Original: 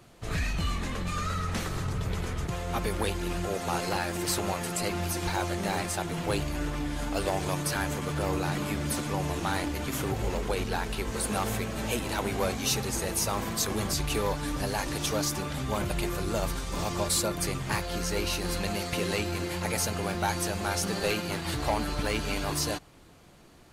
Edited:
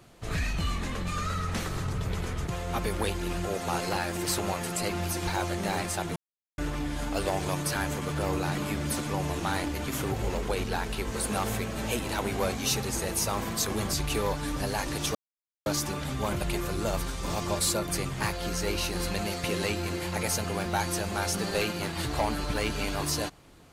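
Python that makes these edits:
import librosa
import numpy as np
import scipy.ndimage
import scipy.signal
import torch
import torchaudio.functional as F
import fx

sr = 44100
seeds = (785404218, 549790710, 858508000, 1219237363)

y = fx.edit(x, sr, fx.silence(start_s=6.16, length_s=0.42),
    fx.insert_silence(at_s=15.15, length_s=0.51), tone=tone)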